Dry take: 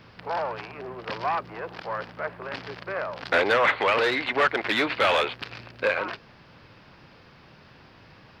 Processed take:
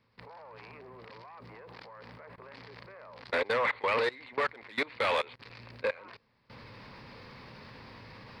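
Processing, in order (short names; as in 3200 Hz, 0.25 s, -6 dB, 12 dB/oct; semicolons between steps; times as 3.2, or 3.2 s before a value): recorder AGC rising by 14 dB/s; ripple EQ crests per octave 0.95, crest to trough 6 dB; level quantiser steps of 22 dB; gain -5.5 dB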